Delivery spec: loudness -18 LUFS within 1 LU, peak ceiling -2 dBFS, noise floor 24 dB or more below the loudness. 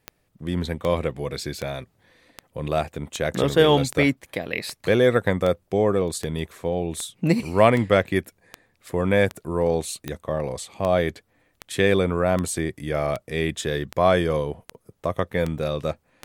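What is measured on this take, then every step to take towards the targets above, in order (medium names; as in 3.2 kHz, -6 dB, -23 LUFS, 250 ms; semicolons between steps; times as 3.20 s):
clicks found 22; loudness -23.5 LUFS; peak level -2.5 dBFS; loudness target -18.0 LUFS
-> de-click; trim +5.5 dB; peak limiter -2 dBFS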